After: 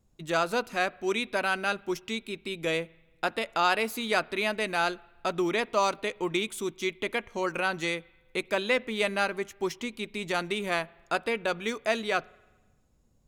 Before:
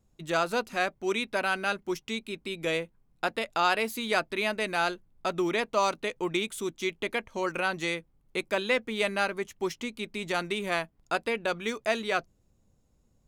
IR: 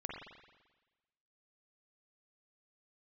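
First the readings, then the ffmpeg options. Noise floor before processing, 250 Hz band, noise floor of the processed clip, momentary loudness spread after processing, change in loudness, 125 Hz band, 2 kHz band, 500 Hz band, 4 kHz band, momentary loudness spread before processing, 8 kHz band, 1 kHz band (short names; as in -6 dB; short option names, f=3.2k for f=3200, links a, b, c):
-68 dBFS, +0.5 dB, -65 dBFS, 7 LU, +0.5 dB, +0.5 dB, +0.5 dB, +0.5 dB, +0.5 dB, 7 LU, +0.5 dB, +0.5 dB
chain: -filter_complex "[0:a]asplit=2[a][b];[1:a]atrim=start_sample=2205[c];[b][c]afir=irnorm=-1:irlink=0,volume=-21.5dB[d];[a][d]amix=inputs=2:normalize=0"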